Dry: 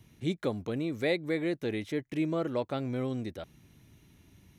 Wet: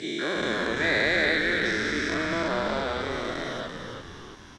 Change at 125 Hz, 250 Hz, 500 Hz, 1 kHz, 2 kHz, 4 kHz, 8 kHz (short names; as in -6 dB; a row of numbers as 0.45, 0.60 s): -1.5 dB, +1.5 dB, +4.0 dB, +11.5 dB, +17.0 dB, +13.5 dB, n/a